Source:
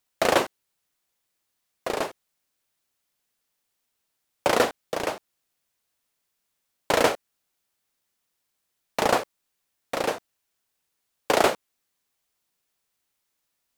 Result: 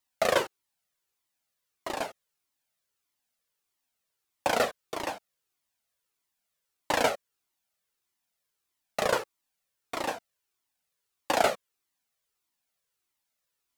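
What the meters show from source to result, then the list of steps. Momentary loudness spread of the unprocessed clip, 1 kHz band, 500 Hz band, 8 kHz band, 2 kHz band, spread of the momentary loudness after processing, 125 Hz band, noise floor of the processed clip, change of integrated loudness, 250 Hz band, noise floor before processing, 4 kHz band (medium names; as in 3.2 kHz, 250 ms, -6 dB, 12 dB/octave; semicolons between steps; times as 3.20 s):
15 LU, -4.0 dB, -5.0 dB, -4.5 dB, -4.0 dB, 15 LU, -6.0 dB, -83 dBFS, -4.5 dB, -7.5 dB, -78 dBFS, -4.5 dB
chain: bass shelf 87 Hz -6.5 dB; Shepard-style flanger falling 1.6 Hz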